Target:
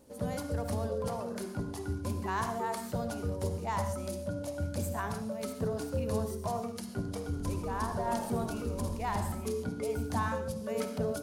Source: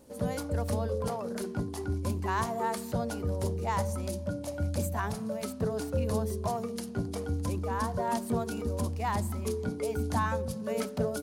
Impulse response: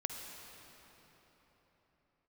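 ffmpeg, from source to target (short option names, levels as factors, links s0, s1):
-filter_complex "[0:a]asettb=1/sr,asplit=3[s0][s1][s2];[s0]atrim=end=7.174[s3];[s1]atrim=start=7.17:end=9.35,asetpts=PTS-STARTPTS,afade=t=in:d=0.004:c=qsin,afade=t=out:st=2.176:d=0.004:c=qsin,asplit=7[s4][s5][s6][s7][s8][s9][s10];[s5]adelay=81,afreqshift=-44,volume=0.299[s11];[s6]adelay=162,afreqshift=-88,volume=0.168[s12];[s7]adelay=243,afreqshift=-132,volume=0.0933[s13];[s8]adelay=324,afreqshift=-176,volume=0.0525[s14];[s9]adelay=405,afreqshift=-220,volume=0.0295[s15];[s10]adelay=486,afreqshift=-264,volume=0.0164[s16];[s4][s11][s12][s13][s14][s15][s16]amix=inputs=7:normalize=0,atrim=end_sample=96138[s17];[s2]atrim=start=9.346[s18];[s3][s17]acrossfade=d=0.004:c1=hsin:c2=qsin[s19];[s19][s18]acrossfade=d=0.004:c1=qsin:c2=hsin[s20];[1:a]atrim=start_sample=2205,afade=t=out:st=0.2:d=0.01,atrim=end_sample=9261[s21];[s20][s21]afir=irnorm=-1:irlink=0,volume=0.794"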